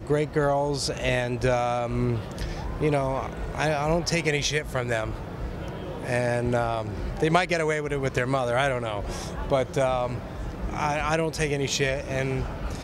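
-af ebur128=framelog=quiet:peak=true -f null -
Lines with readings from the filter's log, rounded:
Integrated loudness:
  I:         -26.5 LUFS
  Threshold: -36.5 LUFS
Loudness range:
  LRA:         1.7 LU
  Threshold: -46.6 LUFS
  LRA low:   -27.2 LUFS
  LRA high:  -25.6 LUFS
True peak:
  Peak:       -9.0 dBFS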